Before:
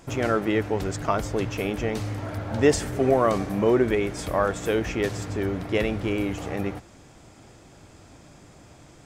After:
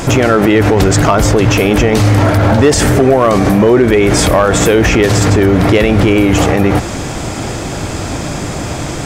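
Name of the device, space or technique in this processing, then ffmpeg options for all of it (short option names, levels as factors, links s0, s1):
loud club master: -af "acompressor=threshold=0.0501:ratio=2.5,asoftclip=type=hard:threshold=0.1,alimiter=level_in=35.5:limit=0.891:release=50:level=0:latency=1,volume=0.891"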